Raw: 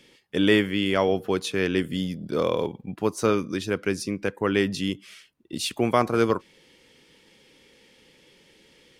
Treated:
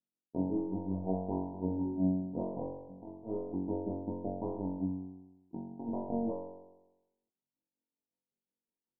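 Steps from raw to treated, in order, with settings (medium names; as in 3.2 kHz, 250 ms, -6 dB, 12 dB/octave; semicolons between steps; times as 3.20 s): peak limiter -16 dBFS, peak gain reduction 9 dB; power-law waveshaper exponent 2; rippled Chebyshev low-pass 970 Hz, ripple 9 dB; de-hum 123.6 Hz, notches 37; tremolo 5.4 Hz, depth 90%; flutter echo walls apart 3.7 m, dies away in 0.99 s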